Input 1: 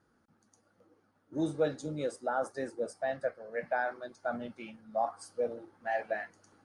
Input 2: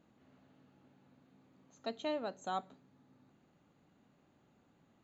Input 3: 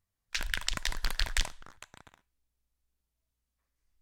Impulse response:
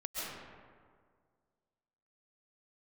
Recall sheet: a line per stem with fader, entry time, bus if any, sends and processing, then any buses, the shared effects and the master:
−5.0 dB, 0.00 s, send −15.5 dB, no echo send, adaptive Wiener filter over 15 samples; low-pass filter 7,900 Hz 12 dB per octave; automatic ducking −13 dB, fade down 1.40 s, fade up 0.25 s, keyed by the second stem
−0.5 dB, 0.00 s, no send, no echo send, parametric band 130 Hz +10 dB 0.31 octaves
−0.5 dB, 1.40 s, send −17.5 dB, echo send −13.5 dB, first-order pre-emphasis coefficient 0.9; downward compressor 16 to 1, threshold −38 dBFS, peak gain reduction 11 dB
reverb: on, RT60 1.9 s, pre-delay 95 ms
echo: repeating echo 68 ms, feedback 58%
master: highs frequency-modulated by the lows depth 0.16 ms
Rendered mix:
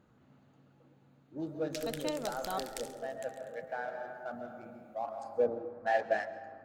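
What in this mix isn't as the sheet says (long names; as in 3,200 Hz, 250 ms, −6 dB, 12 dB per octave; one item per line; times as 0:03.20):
stem 1 −5.0 dB → +3.0 dB
stem 3: send off
master: missing highs frequency-modulated by the lows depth 0.16 ms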